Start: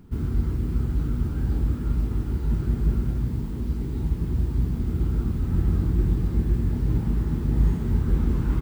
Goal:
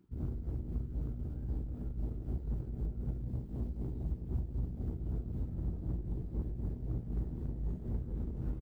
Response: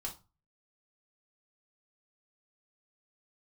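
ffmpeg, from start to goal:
-filter_complex "[0:a]highpass=f=91:p=1,afwtdn=0.0251,equalizer=f=230:t=o:w=2:g=-6,alimiter=level_in=1.33:limit=0.0631:level=0:latency=1:release=359,volume=0.75,tremolo=f=3.9:d=0.51,aeval=exprs='0.0473*(cos(1*acos(clip(val(0)/0.0473,-1,1)))-cos(1*PI/2))+0.00188*(cos(8*acos(clip(val(0)/0.0473,-1,1)))-cos(8*PI/2))':c=same,asplit=2[s0][s1];[s1]adelay=16,volume=0.266[s2];[s0][s2]amix=inputs=2:normalize=0,volume=0.891"

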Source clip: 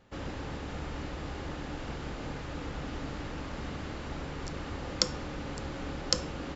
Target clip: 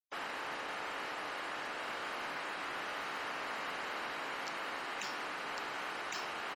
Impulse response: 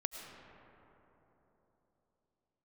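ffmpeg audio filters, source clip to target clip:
-filter_complex "[0:a]lowpass=5300,asplit=3[s0][s1][s2];[s0]afade=t=out:st=1.96:d=0.02[s3];[s1]asplit=6[s4][s5][s6][s7][s8][s9];[s5]adelay=232,afreqshift=56,volume=0.335[s10];[s6]adelay=464,afreqshift=112,volume=0.148[s11];[s7]adelay=696,afreqshift=168,volume=0.0646[s12];[s8]adelay=928,afreqshift=224,volume=0.0285[s13];[s9]adelay=1160,afreqshift=280,volume=0.0126[s14];[s4][s10][s11][s12][s13][s14]amix=inputs=6:normalize=0,afade=t=in:st=1.96:d=0.02,afade=t=out:st=4.57:d=0.02[s15];[s2]afade=t=in:st=4.57:d=0.02[s16];[s3][s15][s16]amix=inputs=3:normalize=0,aeval=exprs='val(0)+0.00355*(sin(2*PI*60*n/s)+sin(2*PI*2*60*n/s)/2+sin(2*PI*3*60*n/s)/3+sin(2*PI*4*60*n/s)/4+sin(2*PI*5*60*n/s)/5)':c=same,highpass=480,afftfilt=real='re*lt(hypot(re,im),0.0282)':imag='im*lt(hypot(re,im),0.0282)':win_size=1024:overlap=0.75,equalizer=f=1600:w=0.3:g=9.5,bandreject=f=3500:w=17,acrusher=bits=6:mix=0:aa=0.5,afftfilt=real='re*gte(hypot(re,im),0.00316)':imag='im*gte(hypot(re,im),0.00316)':win_size=1024:overlap=0.75,volume=0.668"

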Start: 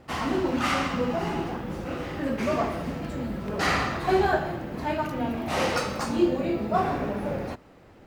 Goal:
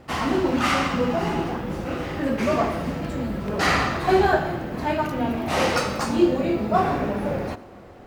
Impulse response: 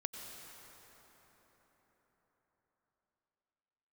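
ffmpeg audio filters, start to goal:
-filter_complex "[0:a]asplit=2[s0][s1];[1:a]atrim=start_sample=2205,adelay=94[s2];[s1][s2]afir=irnorm=-1:irlink=0,volume=0.141[s3];[s0][s3]amix=inputs=2:normalize=0,volume=1.58"

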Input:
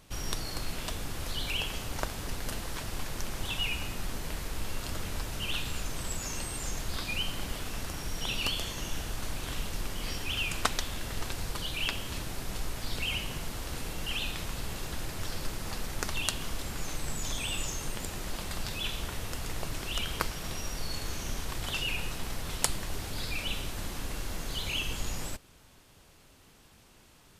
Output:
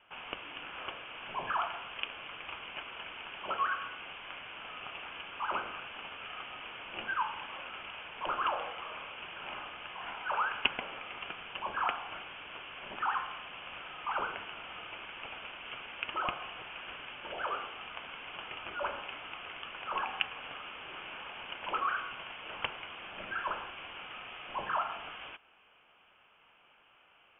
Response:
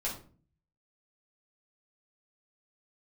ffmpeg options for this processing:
-af "highpass=f=1000:w=0.5412,highpass=f=1000:w=1.3066,lowpass=f=3400:t=q:w=0.5098,lowpass=f=3400:t=q:w=0.6013,lowpass=f=3400:t=q:w=0.9,lowpass=f=3400:t=q:w=2.563,afreqshift=-4000,equalizer=f=1900:t=o:w=0.23:g=-9.5,volume=1.41"

